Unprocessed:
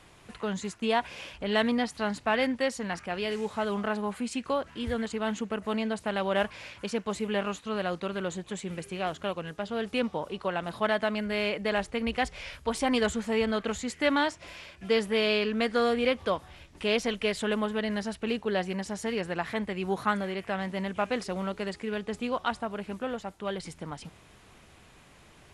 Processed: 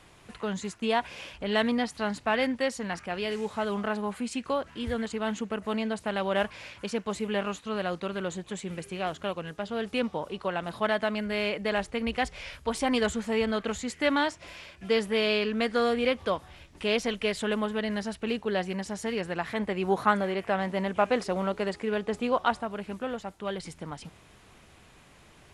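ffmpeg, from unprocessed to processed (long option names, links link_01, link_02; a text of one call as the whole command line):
ffmpeg -i in.wav -filter_complex "[0:a]asettb=1/sr,asplit=3[link_01][link_02][link_03];[link_01]atrim=end=19.594[link_04];[link_02]atrim=start=19.59:end=22.62,asetpts=PTS-STARTPTS,afade=type=in:duration=0.004:curve=qsin,afade=type=out:start_time=3.026:duration=0.004:curve=qsin,equalizer=frequency=650:width=0.51:gain=5.5[link_05];[link_03]atrim=start=22.616[link_06];[link_04][link_05]acrossfade=duration=0.004:curve1=hsin:curve2=qsin[link_07];[link_07][link_06]acrossfade=duration=0.004:curve1=qsin:curve2=hsin" out.wav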